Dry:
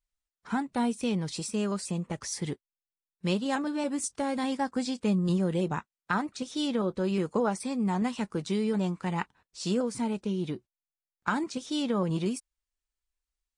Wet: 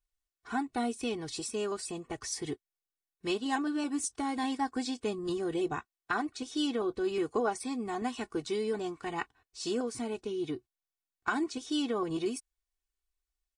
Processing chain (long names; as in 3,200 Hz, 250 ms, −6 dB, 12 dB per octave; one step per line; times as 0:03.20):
comb filter 2.7 ms, depth 86%
level −4 dB